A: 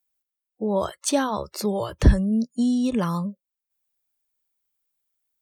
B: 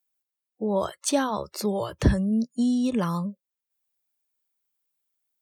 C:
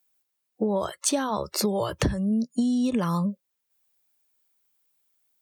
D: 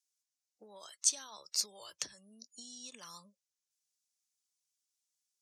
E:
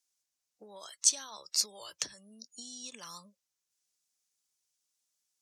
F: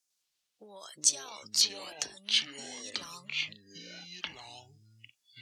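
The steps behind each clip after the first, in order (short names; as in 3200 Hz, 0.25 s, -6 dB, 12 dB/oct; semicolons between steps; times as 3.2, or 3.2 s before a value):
HPF 84 Hz; gain -1.5 dB
compressor 16:1, threshold -29 dBFS, peak gain reduction 16.5 dB; gain +8 dB
band-pass 6000 Hz, Q 2.3
wow and flutter 24 cents; gain +4 dB
echoes that change speed 0.103 s, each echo -6 st, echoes 2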